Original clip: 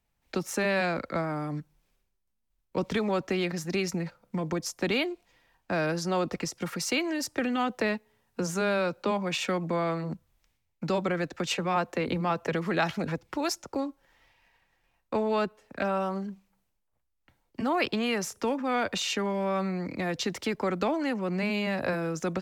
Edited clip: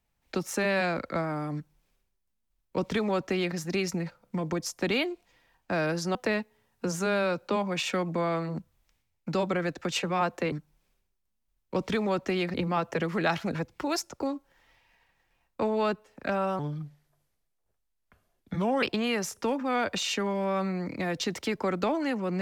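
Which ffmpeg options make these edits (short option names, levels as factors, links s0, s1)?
-filter_complex "[0:a]asplit=6[s0][s1][s2][s3][s4][s5];[s0]atrim=end=6.152[s6];[s1]atrim=start=7.698:end=12.072[s7];[s2]atrim=start=1.538:end=3.562[s8];[s3]atrim=start=12.068:end=16.124[s9];[s4]atrim=start=16.12:end=17.82,asetpts=PTS-STARTPTS,asetrate=33516,aresample=44100[s10];[s5]atrim=start=17.816[s11];[s6][s7]acrossfade=d=0.004:c1=hsin:c2=hsin[s12];[s12][s8]acrossfade=d=0.004:c1=hsin:c2=hsin[s13];[s13][s9]acrossfade=d=0.004:c1=hsin:c2=hsin[s14];[s14][s10]acrossfade=d=0.004:c1=hsin:c2=hsin[s15];[s15][s11]acrossfade=d=0.004:c1=hsin:c2=hsin"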